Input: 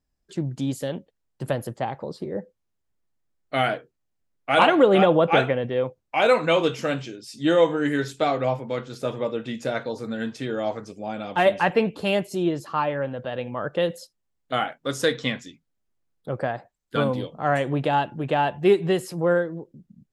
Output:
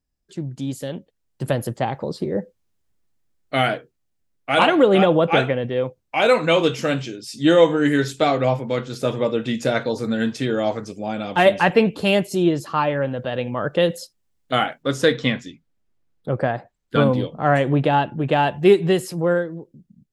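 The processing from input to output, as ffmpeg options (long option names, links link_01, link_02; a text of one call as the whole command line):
ffmpeg -i in.wav -filter_complex "[0:a]asettb=1/sr,asplit=3[link_01][link_02][link_03];[link_01]atrim=end=14.834[link_04];[link_02]atrim=start=14.83:end=18.32,asetpts=PTS-STARTPTS,afade=type=in:duration=0.004:curve=qsin,afade=type=out:start_time=3.486:duration=0.004:curve=qsin,highshelf=frequency=4900:gain=-11[link_05];[link_03]atrim=start=18.316[link_06];[link_04][link_05]acrossfade=duration=0.004:curve1=hsin:curve2=qsin[link_07];[link_07][link_06]acrossfade=duration=0.004:curve1=qsin:curve2=hsin,equalizer=frequency=910:width=0.57:gain=-3.5,dynaudnorm=framelen=560:gausssize=5:maxgain=11.5dB,volume=-1dB" out.wav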